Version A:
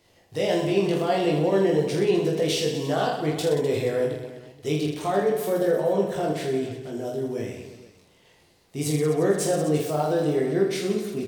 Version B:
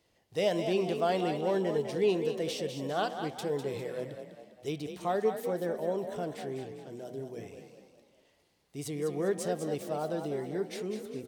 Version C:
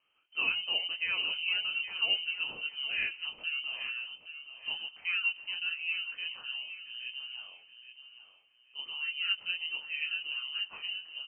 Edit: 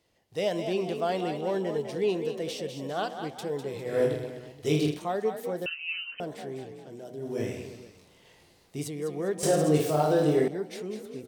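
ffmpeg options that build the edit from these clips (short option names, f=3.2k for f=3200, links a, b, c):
-filter_complex "[0:a]asplit=3[a][b][c];[1:a]asplit=5[d][e][f][g][h];[d]atrim=end=4[i];[a]atrim=start=3.84:end=5.04[j];[e]atrim=start=4.88:end=5.662[k];[2:a]atrim=start=5.658:end=6.202[l];[f]atrim=start=6.198:end=7.42[m];[b]atrim=start=7.18:end=8.9[n];[g]atrim=start=8.66:end=9.432[o];[c]atrim=start=9.428:end=10.482[p];[h]atrim=start=10.478[q];[i][j]acrossfade=d=0.16:c1=tri:c2=tri[r];[r][k]acrossfade=d=0.16:c1=tri:c2=tri[s];[s][l]acrossfade=d=0.004:c1=hsin:c2=hsin[t];[t][m]acrossfade=d=0.004:c1=hsin:c2=hsin[u];[u][n]acrossfade=d=0.24:c1=tri:c2=tri[v];[v][o]acrossfade=d=0.24:c1=tri:c2=tri[w];[w][p]acrossfade=d=0.004:c1=hsin:c2=hsin[x];[x][q]acrossfade=d=0.004:c1=hsin:c2=hsin"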